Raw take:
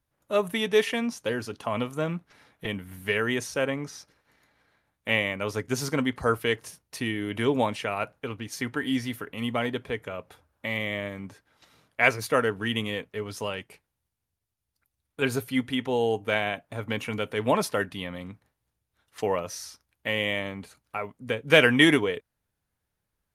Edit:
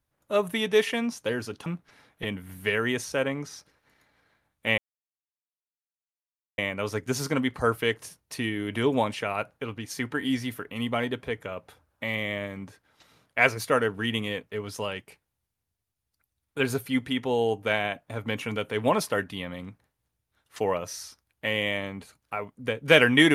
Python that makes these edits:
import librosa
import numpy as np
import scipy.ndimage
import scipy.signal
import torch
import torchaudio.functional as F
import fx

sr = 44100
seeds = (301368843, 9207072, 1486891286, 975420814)

y = fx.edit(x, sr, fx.cut(start_s=1.66, length_s=0.42),
    fx.insert_silence(at_s=5.2, length_s=1.8), tone=tone)